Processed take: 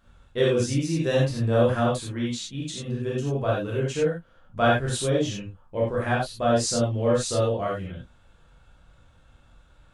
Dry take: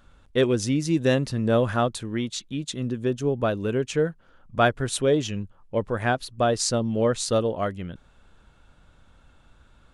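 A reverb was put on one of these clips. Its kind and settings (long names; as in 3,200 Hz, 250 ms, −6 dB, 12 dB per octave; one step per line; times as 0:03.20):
reverb whose tail is shaped and stops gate 120 ms flat, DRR −6 dB
level −7.5 dB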